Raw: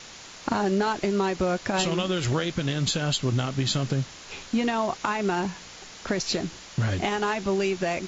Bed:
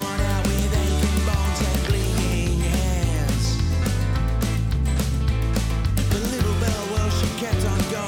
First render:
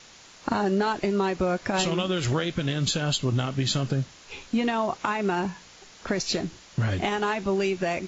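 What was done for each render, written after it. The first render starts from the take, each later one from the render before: noise print and reduce 6 dB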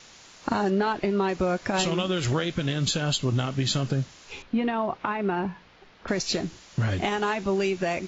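0.70–1.29 s: low-pass 4.2 kHz; 4.42–6.08 s: distance through air 300 m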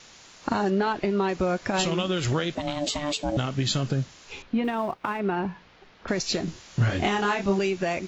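2.55–3.37 s: ring modulator 440 Hz; 4.64–5.20 s: companding laws mixed up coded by A; 6.45–7.59 s: doubling 25 ms -2 dB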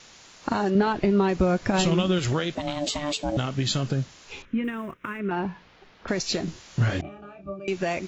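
0.75–2.19 s: bass shelf 240 Hz +9.5 dB; 4.45–5.31 s: static phaser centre 1.9 kHz, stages 4; 7.01–7.68 s: pitch-class resonator D, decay 0.15 s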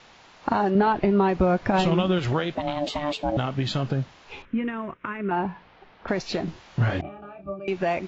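low-pass 3.5 kHz 12 dB/octave; peaking EQ 820 Hz +5.5 dB 0.89 oct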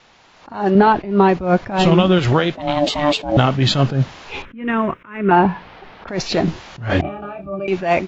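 level rider gain up to 16.5 dB; attacks held to a fixed rise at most 130 dB/s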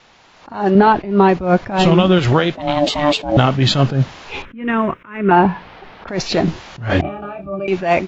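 trim +1.5 dB; peak limiter -1 dBFS, peak gain reduction 1.5 dB

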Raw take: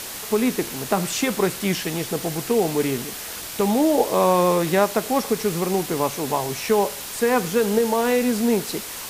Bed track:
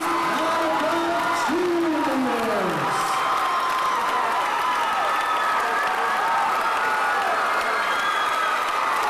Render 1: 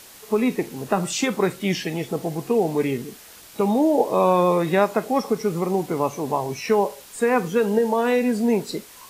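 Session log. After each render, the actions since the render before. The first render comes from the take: noise print and reduce 12 dB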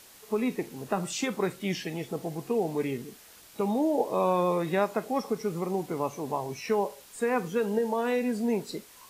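trim -7.5 dB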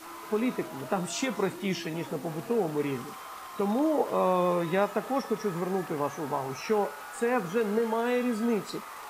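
add bed track -21 dB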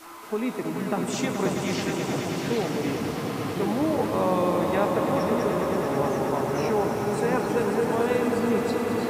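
echo with a slow build-up 108 ms, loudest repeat 5, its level -9 dB; ever faster or slower copies 222 ms, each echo -5 st, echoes 3, each echo -6 dB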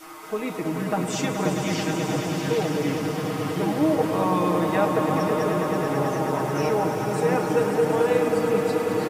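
band-stop 4.1 kHz, Q 17; comb 6.4 ms, depth 72%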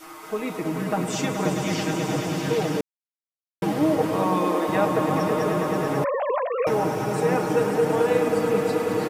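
2.81–3.62 s: mute; 4.16–4.67 s: high-pass 96 Hz -> 310 Hz 24 dB/octave; 6.04–6.67 s: formants replaced by sine waves

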